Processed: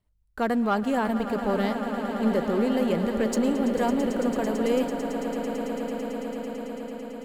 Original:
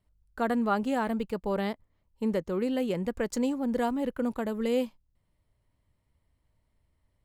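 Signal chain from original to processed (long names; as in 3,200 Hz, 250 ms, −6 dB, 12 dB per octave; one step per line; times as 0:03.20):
leveller curve on the samples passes 1
echo that builds up and dies away 111 ms, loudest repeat 8, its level −13 dB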